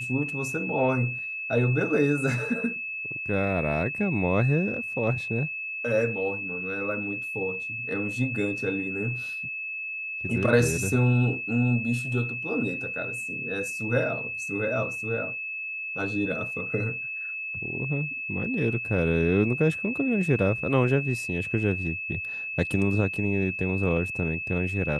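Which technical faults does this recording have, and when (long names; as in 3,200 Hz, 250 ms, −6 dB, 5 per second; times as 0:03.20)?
whistle 2,600 Hz −31 dBFS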